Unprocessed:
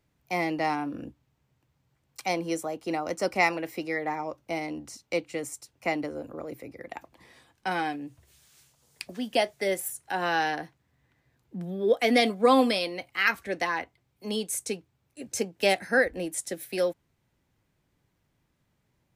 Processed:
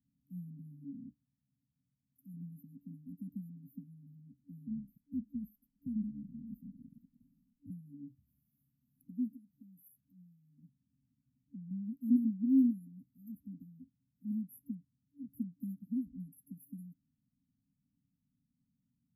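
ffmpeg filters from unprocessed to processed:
-filter_complex "[0:a]asettb=1/sr,asplit=3[s0][s1][s2];[s0]atrim=end=0.844[s3];[s1]atrim=start=0.84:end=2.34,asetpts=PTS-STARTPTS,afade=t=in:d=0.004:c=qsin,afade=t=out:st=1.496:d=0.004:c=qsin,lowshelf=f=490:g=-4.5[s4];[s2]atrim=start=2.336[s5];[s3][s4]acrossfade=d=0.004:c1=hsin:c2=qsin[s6];[s6][s5]acrossfade=d=0.004:c1=qsin:c2=hsin,asettb=1/sr,asplit=3[s7][s8][s9];[s7]atrim=end=4.674[s10];[s8]atrim=start=4.67:end=7.7,asetpts=PTS-STARTPTS,afade=t=in:d=0.004:c=qsin,afade=t=out:st=3.026:d=0.004:c=qsin,afreqshift=-86[s11];[s9]atrim=start=7.696[s12];[s10][s11]acrossfade=d=0.004:c1=hsin:c2=qsin[s13];[s13][s12]acrossfade=d=0.004:c1=qsin:c2=hsin,asettb=1/sr,asplit=3[s14][s15][s16];[s14]atrim=end=9.274[s17];[s15]atrim=start=9.27:end=11.71,asetpts=PTS-STARTPTS,afade=t=in:d=0.004:c=qsin,afade=t=out:st=2.436:d=0.004:c=qsin,acompressor=threshold=0.00708:ratio=2.5:attack=3.2:release=140:knee=1:detection=peak[s18];[s16]atrim=start=11.706[s19];[s17][s18]acrossfade=d=0.004:c1=hsin:c2=qsin[s20];[s20][s19]acrossfade=d=0.004:c1=qsin:c2=hsin,afftfilt=real='re*(1-between(b*sr/4096,280,11000))':imag='im*(1-between(b*sr/4096,280,11000))':win_size=4096:overlap=0.75,acrossover=split=170 7300:gain=0.158 1 0.126[s21][s22][s23];[s21][s22][s23]amix=inputs=3:normalize=0"

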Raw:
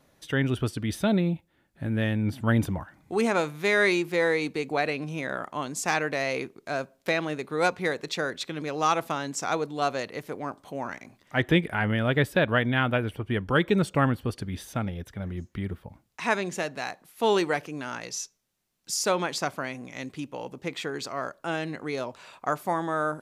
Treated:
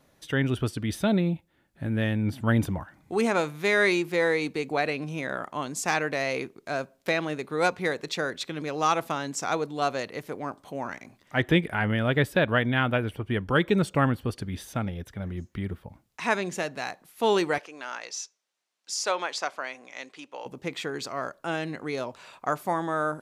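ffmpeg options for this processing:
-filter_complex "[0:a]asettb=1/sr,asplit=3[s0][s1][s2];[s0]atrim=end=17.584[s3];[s1]atrim=start=17.58:end=20.46,asetpts=PTS-STARTPTS,afade=t=in:d=0.004:c=qsin,afade=t=out:st=2.876:d=0.004:c=qsin,highpass=550,lowpass=7200[s4];[s2]atrim=start=20.456[s5];[s3][s4]acrossfade=d=0.004:c1=hsin:c2=qsin[s6];[s6][s5]acrossfade=d=0.004:c1=qsin:c2=hsin"

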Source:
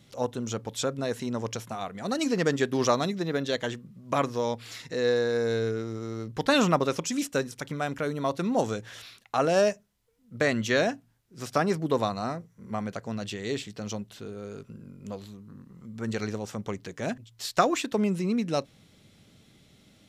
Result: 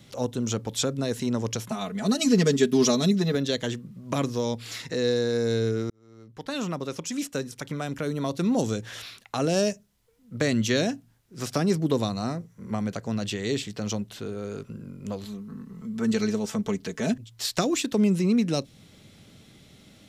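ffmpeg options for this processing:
-filter_complex "[0:a]asettb=1/sr,asplit=3[s0][s1][s2];[s0]atrim=end=1.684[s3];[s1]atrim=start=1.68:end=3.35,asetpts=PTS-STARTPTS,afade=t=in:d=0.004:c=qsin,afade=t=out:st=1.666:d=0.004:c=qsin,aecho=1:1:4.7:0.84,atrim=end_sample=73647[s4];[s2]atrim=start=3.346[s5];[s3][s4]acrossfade=d=0.004:c1=hsin:c2=qsin[s6];[s6][s5]acrossfade=d=0.004:c1=qsin:c2=hsin,asettb=1/sr,asplit=3[s7][s8][s9];[s7]atrim=end=15.244[s10];[s8]atrim=start=15.24:end=17.14,asetpts=PTS-STARTPTS,afade=t=in:d=0.004:c=qsin,afade=t=out:st=1.896:d=0.004:c=qsin,aecho=1:1:4.6:0.65,atrim=end_sample=83790[s11];[s9]atrim=start=17.136[s12];[s10][s11]acrossfade=d=0.004:c1=hsin:c2=qsin[s13];[s13][s12]acrossfade=d=0.004:c1=qsin:c2=hsin,asplit=2[s14][s15];[s14]atrim=end=5.9,asetpts=PTS-STARTPTS,afade=t=out:st=5.896:d=0.004:c=hsin[s16];[s15]atrim=start=5.9,asetpts=PTS-STARTPTS,afade=t=in:d=2.73[s17];[s16][s17]concat=n=2:v=0:a=1,acrossover=split=400|3000[s18][s19][s20];[s19]acompressor=threshold=0.00891:ratio=3[s21];[s18][s21][s20]amix=inputs=3:normalize=0,volume=1.88"

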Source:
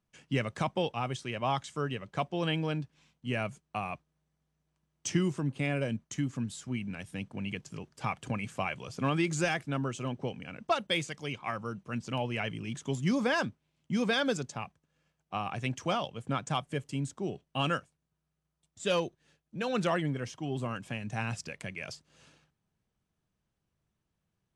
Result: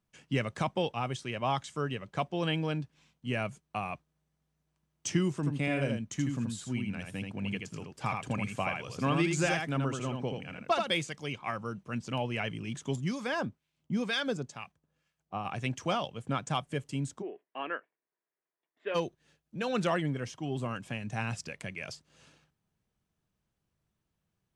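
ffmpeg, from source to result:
-filter_complex "[0:a]asettb=1/sr,asplit=3[s0][s1][s2];[s0]atrim=end=5.354[s3];[s1]atrim=start=5.35:end=10.92,asetpts=PTS-STARTPTS,afade=t=in:d=0.004:c=qsin,afade=t=out:st=5.566:d=0.004:c=qsin,aecho=1:1:80:0.596,atrim=end_sample=245637[s4];[s2]atrim=start=10.916[s5];[s3][s4]acrossfade=d=0.004:c1=hsin:c2=qsin[s6];[s6][s5]acrossfade=d=0.004:c1=qsin:c2=hsin,asettb=1/sr,asplit=3[s7][s8][s9];[s7]atrim=end=12.964[s10];[s8]atrim=start=12.96:end=15.45,asetpts=PTS-STARTPTS,afade=t=in:d=0.004:c=qsin,afade=t=out:st=2.486:d=0.004:c=qsin,acrossover=split=1200[s11][s12];[s11]aeval=exprs='val(0)*(1-0.7/2+0.7/2*cos(2*PI*2.1*n/s))':c=same[s13];[s12]aeval=exprs='val(0)*(1-0.7/2-0.7/2*cos(2*PI*2.1*n/s))':c=same[s14];[s13][s14]amix=inputs=2:normalize=0[s15];[s9]atrim=start=15.446[s16];[s10][s15]acrossfade=d=0.004:c1=hsin:c2=qsin[s17];[s17][s16]acrossfade=d=0.004:c1=qsin:c2=hsin,asplit=3[s18][s19][s20];[s18]afade=t=out:st=17.21:d=0.02[s21];[s19]highpass=f=360:w=0.5412,highpass=f=360:w=1.3066,equalizer=f=550:t=q:w=4:g=-6,equalizer=f=790:t=q:w=4:g=-5,equalizer=f=1300:t=q:w=4:g=-7,equalizer=f=1900:t=q:w=4:g=4,lowpass=f=2100:w=0.5412,lowpass=f=2100:w=1.3066,afade=t=in:st=17.21:d=0.02,afade=t=out:st=18.94:d=0.02[s22];[s20]afade=t=in:st=18.94:d=0.02[s23];[s21][s22][s23]amix=inputs=3:normalize=0"

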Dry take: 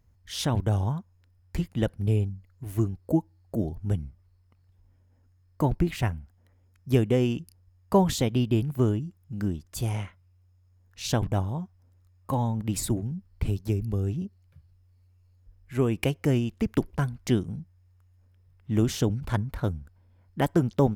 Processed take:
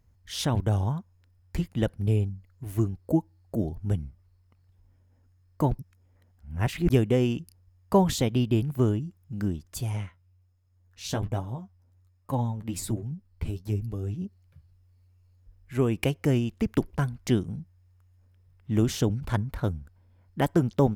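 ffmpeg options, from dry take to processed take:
-filter_complex "[0:a]asettb=1/sr,asplit=3[s0][s1][s2];[s0]atrim=end=9.784[s3];[s1]atrim=start=9.78:end=14.24,asetpts=PTS-STARTPTS,afade=t=in:d=0.004:c=qsin,afade=t=out:st=4.456:d=0.004:c=qsin,flanger=delay=6.4:depth=6.7:regen=31:speed=1.2:shape=triangular[s4];[s2]atrim=start=14.236[s5];[s3][s4]acrossfade=d=0.004:c1=hsin:c2=qsin[s6];[s6][s5]acrossfade=d=0.004:c1=qsin:c2=hsin,asplit=3[s7][s8][s9];[s7]atrim=end=5.792[s10];[s8]atrim=start=5.788:end=6.902,asetpts=PTS-STARTPTS,areverse[s11];[s9]atrim=start=6.898[s12];[s10][s11]acrossfade=d=0.004:c1=hsin:c2=hsin[s13];[s13][s12]acrossfade=d=0.004:c1=hsin:c2=hsin"

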